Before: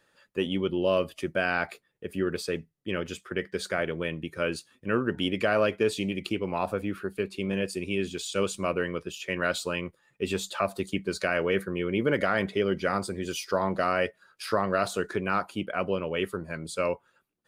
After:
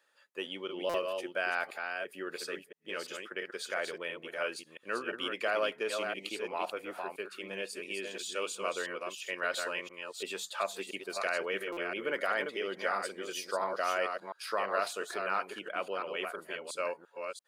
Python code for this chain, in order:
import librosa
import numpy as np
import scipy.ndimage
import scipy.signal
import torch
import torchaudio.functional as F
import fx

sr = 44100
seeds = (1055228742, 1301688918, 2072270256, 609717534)

y = fx.reverse_delay(x, sr, ms=341, wet_db=-5)
y = scipy.signal.sosfilt(scipy.signal.butter(2, 550.0, 'highpass', fs=sr, output='sos'), y)
y = fx.buffer_glitch(y, sr, at_s=(0.89, 11.72), block=256, repeats=8)
y = F.gain(torch.from_numpy(y), -4.5).numpy()